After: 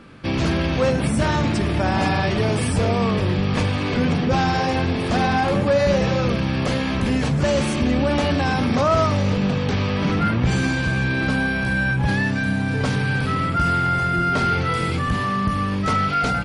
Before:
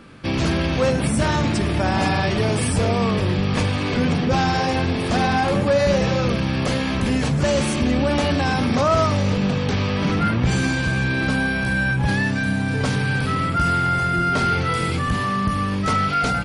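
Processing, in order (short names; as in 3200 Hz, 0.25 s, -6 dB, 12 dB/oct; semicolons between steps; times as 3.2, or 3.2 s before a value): high shelf 6900 Hz -6.5 dB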